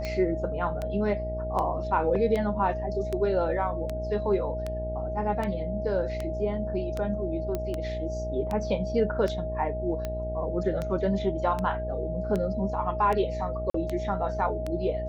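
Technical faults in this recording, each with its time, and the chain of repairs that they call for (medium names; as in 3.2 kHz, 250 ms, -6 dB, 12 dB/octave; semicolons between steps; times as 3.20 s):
buzz 60 Hz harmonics 14 -34 dBFS
tick 78 rpm -18 dBFS
whine 630 Hz -32 dBFS
7.55 s: pop -17 dBFS
13.70–13.74 s: dropout 44 ms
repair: de-click; de-hum 60 Hz, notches 14; band-stop 630 Hz, Q 30; interpolate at 13.70 s, 44 ms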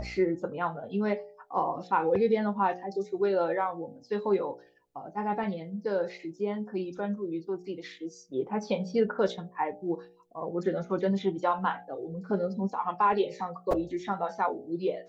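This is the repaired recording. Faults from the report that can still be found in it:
nothing left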